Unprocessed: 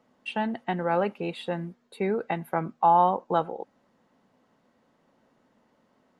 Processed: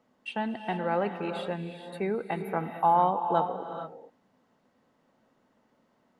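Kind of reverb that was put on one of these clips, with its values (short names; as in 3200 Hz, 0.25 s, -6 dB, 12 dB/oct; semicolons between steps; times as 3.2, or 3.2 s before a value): non-linear reverb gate 0.48 s rising, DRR 6.5 dB; gain -3 dB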